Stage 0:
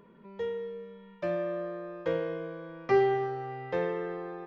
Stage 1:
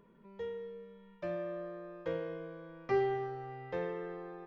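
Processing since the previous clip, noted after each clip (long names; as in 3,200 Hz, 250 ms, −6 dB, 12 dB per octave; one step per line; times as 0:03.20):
low-shelf EQ 62 Hz +11 dB
level −7 dB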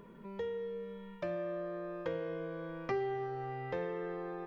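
downward compressor 2.5 to 1, threshold −48 dBFS, peak gain reduction 14.5 dB
level +9 dB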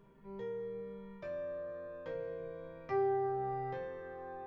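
sub-octave generator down 2 octaves, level −3 dB
resonators tuned to a chord C3 minor, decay 0.32 s
level +7 dB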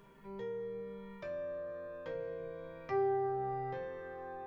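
one half of a high-frequency compander encoder only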